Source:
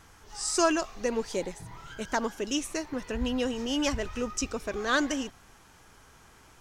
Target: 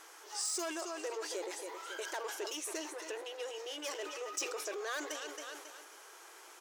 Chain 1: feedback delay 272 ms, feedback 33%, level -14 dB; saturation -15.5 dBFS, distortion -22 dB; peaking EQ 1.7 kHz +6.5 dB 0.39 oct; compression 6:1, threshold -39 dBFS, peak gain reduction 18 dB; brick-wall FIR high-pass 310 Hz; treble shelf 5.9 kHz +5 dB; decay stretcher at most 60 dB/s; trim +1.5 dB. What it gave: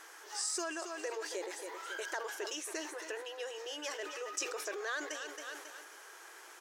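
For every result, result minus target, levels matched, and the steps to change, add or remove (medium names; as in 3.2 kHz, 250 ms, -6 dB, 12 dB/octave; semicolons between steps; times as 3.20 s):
saturation: distortion -12 dB; 2 kHz band +3.0 dB
change: saturation -26.5 dBFS, distortion -10 dB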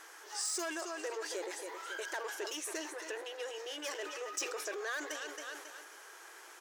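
2 kHz band +3.0 dB
remove: peaking EQ 1.7 kHz +6.5 dB 0.39 oct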